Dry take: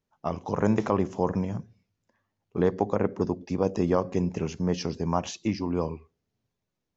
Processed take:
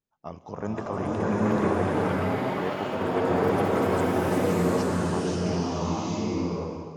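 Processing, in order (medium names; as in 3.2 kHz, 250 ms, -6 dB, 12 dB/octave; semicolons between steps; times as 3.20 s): ever faster or slower copies 595 ms, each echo +6 st, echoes 3; swelling reverb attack 840 ms, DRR -8.5 dB; trim -8.5 dB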